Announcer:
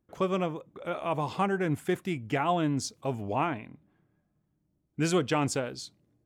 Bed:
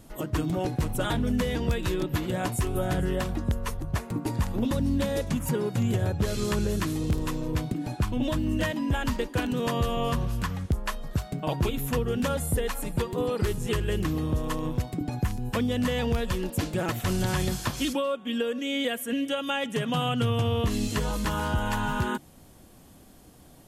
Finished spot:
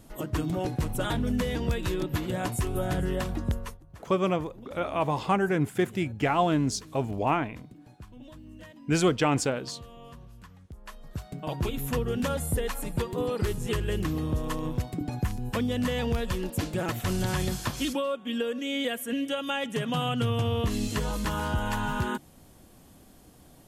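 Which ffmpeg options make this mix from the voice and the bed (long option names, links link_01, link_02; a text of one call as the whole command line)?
ffmpeg -i stem1.wav -i stem2.wav -filter_complex "[0:a]adelay=3900,volume=3dB[link_01];[1:a]volume=17dB,afade=type=out:start_time=3.54:duration=0.25:silence=0.11885,afade=type=in:start_time=10.71:duration=1.17:silence=0.11885[link_02];[link_01][link_02]amix=inputs=2:normalize=0" out.wav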